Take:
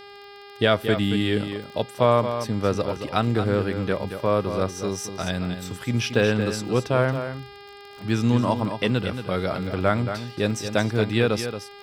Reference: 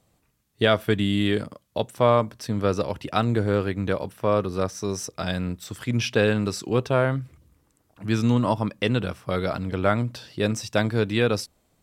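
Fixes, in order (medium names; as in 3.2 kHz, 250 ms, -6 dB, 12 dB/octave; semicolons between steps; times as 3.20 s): de-click; de-hum 403.7 Hz, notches 13; inverse comb 226 ms -9 dB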